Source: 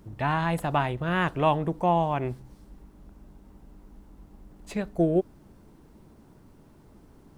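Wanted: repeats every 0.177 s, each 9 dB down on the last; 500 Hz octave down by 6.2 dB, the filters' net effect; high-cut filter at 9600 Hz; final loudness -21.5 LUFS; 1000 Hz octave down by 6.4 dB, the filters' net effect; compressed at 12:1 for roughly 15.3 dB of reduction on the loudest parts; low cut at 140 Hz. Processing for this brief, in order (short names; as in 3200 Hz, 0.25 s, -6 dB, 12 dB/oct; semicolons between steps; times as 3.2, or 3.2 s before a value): HPF 140 Hz; LPF 9600 Hz; bell 500 Hz -7 dB; bell 1000 Hz -5.5 dB; compressor 12:1, threshold -37 dBFS; feedback echo 0.177 s, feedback 35%, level -9 dB; gain +21 dB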